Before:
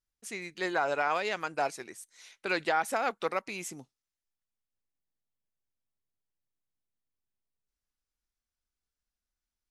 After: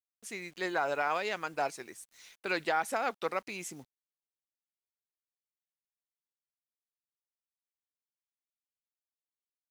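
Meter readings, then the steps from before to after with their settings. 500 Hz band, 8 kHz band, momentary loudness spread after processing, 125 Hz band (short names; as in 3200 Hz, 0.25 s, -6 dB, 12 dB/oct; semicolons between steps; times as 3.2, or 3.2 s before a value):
-2.0 dB, -2.0 dB, 16 LU, -2.0 dB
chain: bit-crush 10-bit; gain -2 dB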